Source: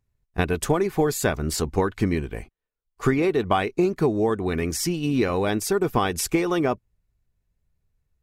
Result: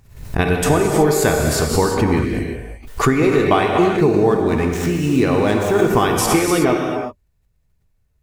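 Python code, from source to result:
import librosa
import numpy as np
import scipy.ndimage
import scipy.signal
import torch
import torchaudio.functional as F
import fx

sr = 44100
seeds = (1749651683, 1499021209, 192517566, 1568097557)

y = fx.median_filter(x, sr, points=9, at=(3.88, 5.78))
y = fx.rev_gated(y, sr, seeds[0], gate_ms=400, shape='flat', drr_db=0.5)
y = fx.pre_swell(y, sr, db_per_s=100.0)
y = y * 10.0 ** (4.5 / 20.0)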